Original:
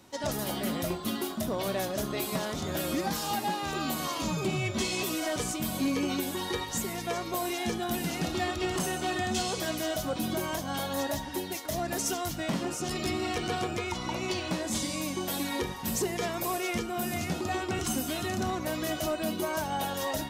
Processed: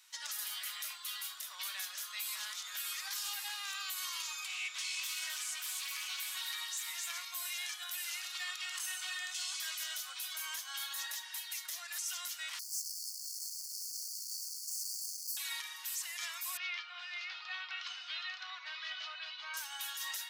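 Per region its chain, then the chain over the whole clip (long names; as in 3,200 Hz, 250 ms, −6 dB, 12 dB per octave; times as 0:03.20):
0:04.49–0:07.25: single-tap delay 261 ms −6 dB + highs frequency-modulated by the lows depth 0.11 ms
0:12.59–0:15.37: single-tap delay 675 ms −7 dB + comparator with hysteresis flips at −48 dBFS + linear-phase brick-wall band-stop 180–4,300 Hz
0:16.57–0:19.54: Butterworth low-pass 4,500 Hz + low shelf with overshoot 230 Hz −10.5 dB, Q 1.5
whole clip: Bessel high-pass filter 2,000 Hz, order 6; brickwall limiter −29.5 dBFS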